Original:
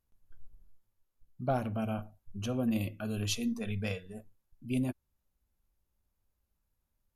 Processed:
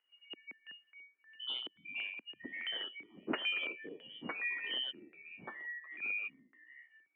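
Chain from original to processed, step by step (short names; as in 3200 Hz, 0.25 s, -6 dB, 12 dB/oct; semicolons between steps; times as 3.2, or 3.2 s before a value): four-band scrambler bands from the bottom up 3412; LFO low-pass square 1.5 Hz 400–2000 Hz; echoes that change speed 91 ms, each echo -4 st, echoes 2, each echo -6 dB; mistuned SSB -75 Hz 350–2800 Hz; 1.73–3.39 air absorption 150 m; gain +4 dB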